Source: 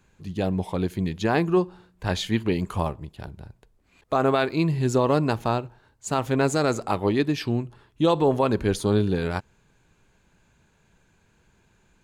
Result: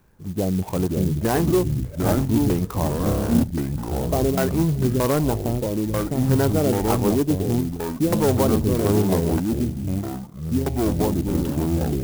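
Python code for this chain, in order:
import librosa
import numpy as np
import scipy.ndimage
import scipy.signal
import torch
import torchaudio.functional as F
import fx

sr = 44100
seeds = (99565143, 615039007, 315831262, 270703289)

p1 = fx.sample_hold(x, sr, seeds[0], rate_hz=3400.0, jitter_pct=0)
p2 = x + F.gain(torch.from_numpy(p1), -4.5).numpy()
p3 = 10.0 ** (-13.5 / 20.0) * np.tanh(p2 / 10.0 ** (-13.5 / 20.0))
p4 = fx.filter_lfo_lowpass(p3, sr, shape='saw_down', hz=1.6, low_hz=270.0, high_hz=3400.0, q=0.94)
p5 = fx.echo_pitch(p4, sr, ms=427, semitones=-4, count=3, db_per_echo=-3.0)
p6 = fx.room_flutter(p5, sr, wall_m=5.1, rt60_s=1.3, at=(3.03, 3.43))
y = fx.clock_jitter(p6, sr, seeds[1], jitter_ms=0.069)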